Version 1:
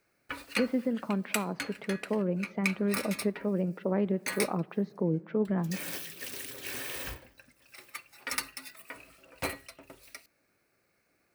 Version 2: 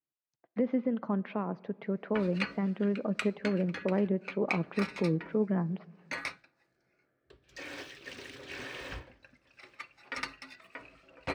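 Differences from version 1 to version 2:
background: entry +1.85 s; master: add air absorption 150 m

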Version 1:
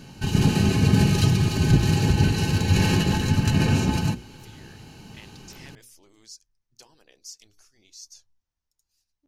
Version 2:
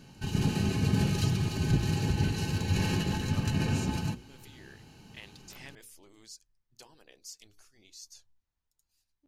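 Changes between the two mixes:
speech: add bell 5700 Hz -7 dB 0.46 oct; background -8.5 dB

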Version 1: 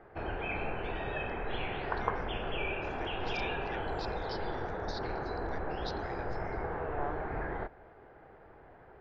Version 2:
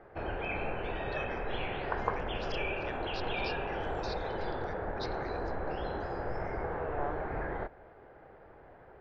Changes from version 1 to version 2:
speech: entry -0.85 s; master: add bell 550 Hz +4 dB 0.3 oct

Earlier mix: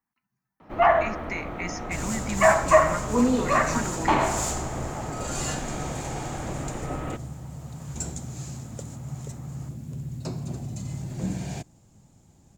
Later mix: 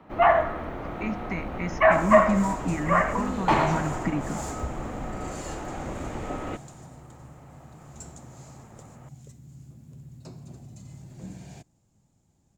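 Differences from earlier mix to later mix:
speech: add tilt -3.5 dB/oct; first sound: entry -0.60 s; second sound -11.0 dB

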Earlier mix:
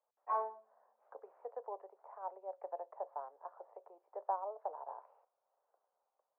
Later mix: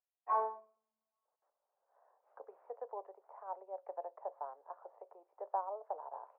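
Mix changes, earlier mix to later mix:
speech: entry +1.25 s; background: send +7.0 dB

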